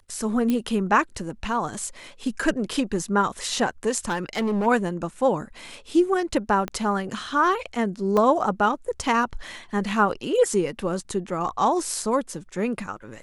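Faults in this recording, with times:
0:00.50: click −12 dBFS
0:04.08–0:04.67: clipping −20.5 dBFS
0:06.68: click −15 dBFS
0:08.17: drop-out 2.2 ms

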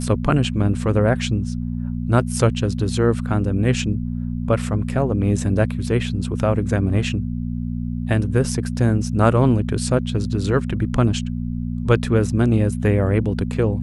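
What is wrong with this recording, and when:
mains hum 60 Hz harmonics 4 −25 dBFS

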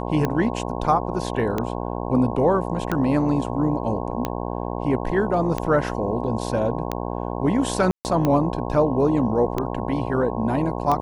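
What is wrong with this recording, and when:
mains buzz 60 Hz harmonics 18 −28 dBFS
scratch tick 45 rpm −10 dBFS
0:07.91–0:08.05: drop-out 139 ms

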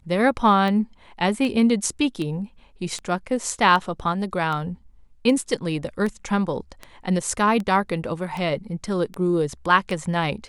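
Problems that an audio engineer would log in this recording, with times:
scratch tick 78 rpm −17 dBFS

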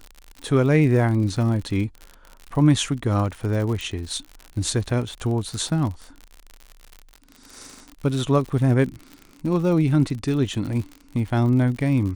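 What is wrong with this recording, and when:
surface crackle 68 per second −30 dBFS
0:03.81: click

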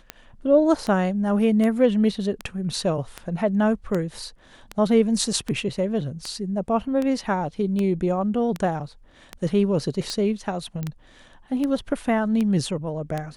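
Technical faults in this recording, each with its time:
scratch tick 78 rpm −14 dBFS
0:10.83: click −17 dBFS

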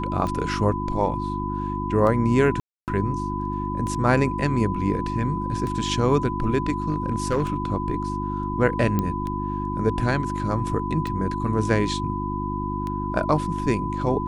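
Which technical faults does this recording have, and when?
mains hum 50 Hz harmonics 7 −29 dBFS
scratch tick 33 1/3 rpm −18 dBFS
whistle 1,000 Hz −29 dBFS
0:02.60–0:02.88: drop-out 278 ms
0:06.90–0:07.56: clipping −16.5 dBFS
0:08.99: click −11 dBFS

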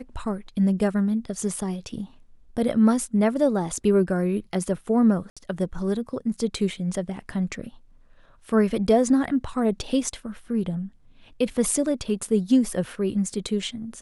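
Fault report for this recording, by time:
0:05.30–0:05.37: drop-out 66 ms

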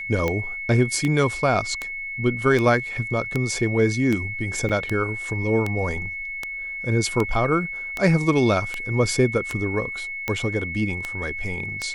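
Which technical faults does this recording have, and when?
scratch tick 78 rpm −11 dBFS
whistle 2,200 Hz −29 dBFS
0:04.69–0:04.70: drop-out 6.2 ms

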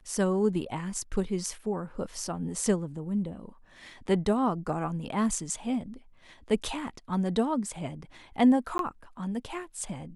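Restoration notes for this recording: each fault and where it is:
0:08.78–0:08.79: drop-out 12 ms

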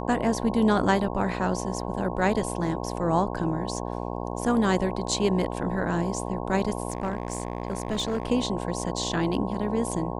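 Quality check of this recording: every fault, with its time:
mains buzz 60 Hz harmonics 18 −32 dBFS
0:06.90–0:08.30: clipping −22 dBFS

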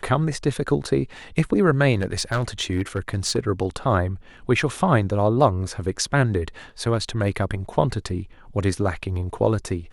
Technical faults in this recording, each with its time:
0:02.01–0:03.38: clipping −17 dBFS

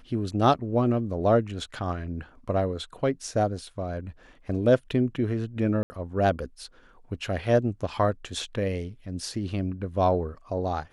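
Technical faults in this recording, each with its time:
0:05.83–0:05.90: drop-out 70 ms

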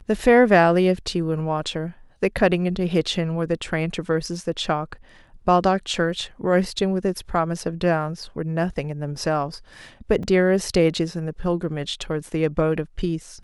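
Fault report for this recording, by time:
0:10.23: drop-out 3.3 ms

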